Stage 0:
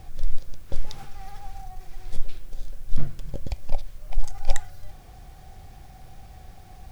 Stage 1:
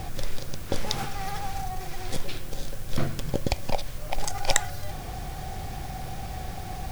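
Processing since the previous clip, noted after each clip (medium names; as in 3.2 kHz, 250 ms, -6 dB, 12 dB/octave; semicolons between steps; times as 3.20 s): spectrum-flattening compressor 2:1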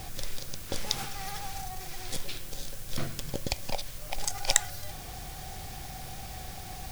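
treble shelf 2.3 kHz +10 dB; trim -7.5 dB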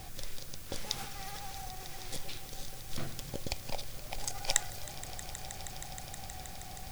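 echo with a slow build-up 158 ms, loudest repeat 5, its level -17.5 dB; trim -5.5 dB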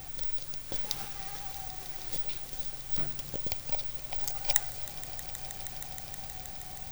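careless resampling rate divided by 2×, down none, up zero stuff; trim -1 dB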